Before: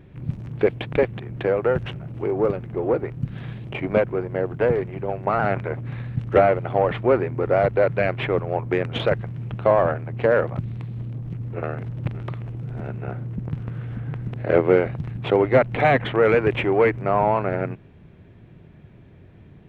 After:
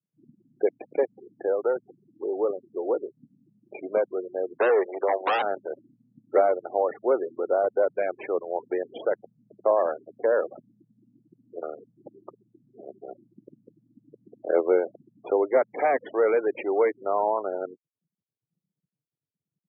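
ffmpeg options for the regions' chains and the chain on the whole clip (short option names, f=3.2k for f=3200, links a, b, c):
-filter_complex "[0:a]asettb=1/sr,asplit=3[a][b][c];[a]atrim=end=4.604[d];[b]atrim=start=4.6:end=5.42,asetpts=PTS-STARTPTS,afade=t=in:d=0.004:c=qsin,afade=t=out:st=0.816:d=0.004:c=qsin,highpass=600,lowpass=2.3k,aeval=exprs='0.251*sin(PI/2*3.98*val(0)/0.251)':c=same[e];[c]atrim=start=5.416[f];[d][e]acrossfade=d=0.004:c1=hsin:c2=qsin[g];[g][f]acrossfade=d=0.004:c1=qsin:c2=hsin,lowpass=f=1k:p=1,afftfilt=real='re*gte(hypot(re,im),0.0447)':imag='im*gte(hypot(re,im),0.0447)':win_size=1024:overlap=0.75,highpass=f=350:w=0.5412,highpass=f=350:w=1.3066,volume=-2.5dB"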